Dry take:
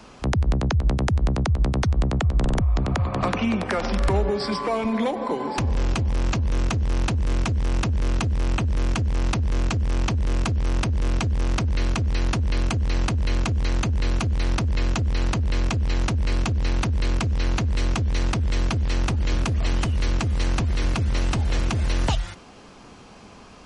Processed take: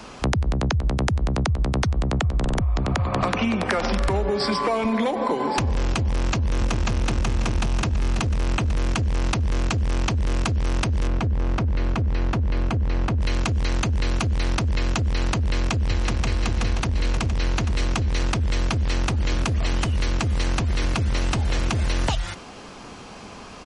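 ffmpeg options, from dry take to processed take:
-filter_complex "[0:a]asplit=2[a][b];[b]afade=t=in:st=6.07:d=0.01,afade=t=out:st=7.12:d=0.01,aecho=0:1:540|1080|1620|2160|2700|3240:1|0.4|0.16|0.064|0.0256|0.01024[c];[a][c]amix=inputs=2:normalize=0,asettb=1/sr,asplit=3[d][e][f];[d]atrim=end=11.074[g];[e]atrim=start=11.07:end=13.21,asetpts=PTS-STARTPTS,afade=t=in:d=0.004:c=qsin,afade=t=out:st=2.136:d=0.004:c=qsin,lowpass=f=1.3k:p=1[h];[f]atrim=start=13.206[i];[g][h]acrossfade=d=0.004:c1=hsin:c2=qsin[j];[j][i]acrossfade=d=0.004:c1=qsin:c2=hsin,asplit=2[k][l];[l]afade=t=in:st=15.37:d=0.01,afade=t=out:st=16.25:d=0.01,aecho=0:1:530|1060|1590|2120|2650|3180|3710|4240:0.841395|0.462767|0.254522|0.139987|0.0769929|0.0423461|0.0232904|0.0128097[m];[k][m]amix=inputs=2:normalize=0,lowshelf=f=380:g=-3,acompressor=threshold=-26dB:ratio=6,volume=7dB"

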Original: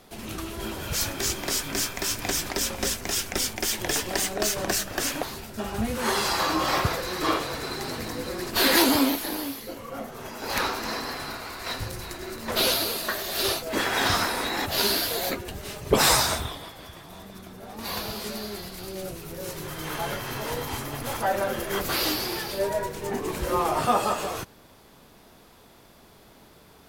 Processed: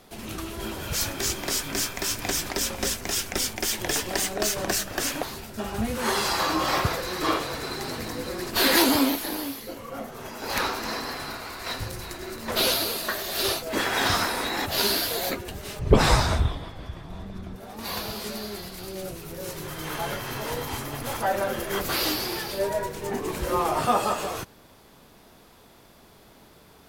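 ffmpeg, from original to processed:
-filter_complex "[0:a]asettb=1/sr,asplit=3[a][b][c];[a]atrim=end=15.794[d];[b]atrim=start=15.79:end=17.56,asetpts=PTS-STARTPTS,afade=t=in:d=0.004:c=qsin,afade=t=out:st=1.766:d=0.004:c=qsin,aemphasis=mode=reproduction:type=bsi[e];[c]atrim=start=17.556[f];[d][e]acrossfade=d=0.004:c1=hsin:c2=qsin[g];[g][f]acrossfade=d=0.004:c1=qsin:c2=hsin"

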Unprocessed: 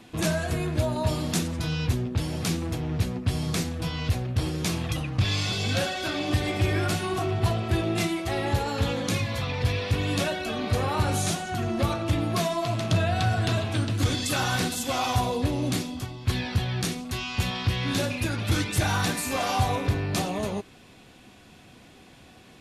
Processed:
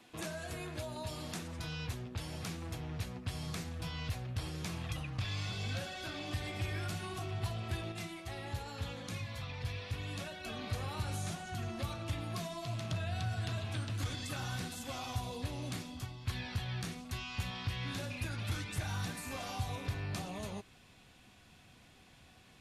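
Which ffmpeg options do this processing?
-filter_complex "[0:a]asplit=3[a][b][c];[a]atrim=end=7.922[d];[b]atrim=start=7.918:end=10.442,asetpts=PTS-STARTPTS,volume=-5dB[e];[c]atrim=start=10.438[f];[d][e]acrossfade=d=0.004:c1=hsin:c2=hsin[g];[g][f]acrossfade=d=0.004:c1=hsin:c2=hsin,lowshelf=f=270:g=-11,acrossover=split=480|2400[h][i][j];[h]acompressor=threshold=-35dB:ratio=4[k];[i]acompressor=threshold=-37dB:ratio=4[l];[j]acompressor=threshold=-39dB:ratio=4[m];[k][l][m]amix=inputs=3:normalize=0,asubboost=boost=4:cutoff=160,volume=-7.5dB"

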